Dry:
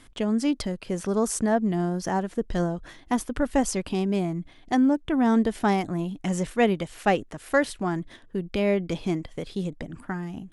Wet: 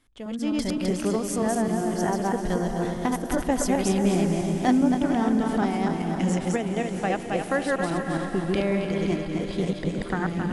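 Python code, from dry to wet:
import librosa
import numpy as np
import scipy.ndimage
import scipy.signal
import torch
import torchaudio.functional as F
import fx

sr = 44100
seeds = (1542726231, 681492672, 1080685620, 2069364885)

y = fx.reverse_delay_fb(x, sr, ms=132, feedback_pct=53, wet_db=-1.0)
y = fx.doppler_pass(y, sr, speed_mps=7, closest_m=5.2, pass_at_s=4.23)
y = fx.recorder_agc(y, sr, target_db=-16.0, rise_db_per_s=20.0, max_gain_db=30)
y = fx.echo_diffused(y, sr, ms=505, feedback_pct=53, wet_db=-9.0)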